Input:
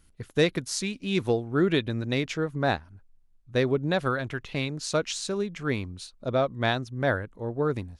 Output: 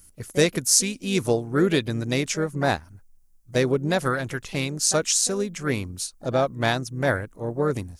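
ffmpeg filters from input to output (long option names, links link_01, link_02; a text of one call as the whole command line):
ffmpeg -i in.wav -filter_complex "[0:a]aexciter=amount=5:drive=4:freq=5200,asplit=2[link_01][link_02];[link_02]asetrate=55563,aresample=44100,atempo=0.793701,volume=-13dB[link_03];[link_01][link_03]amix=inputs=2:normalize=0,volume=2.5dB" out.wav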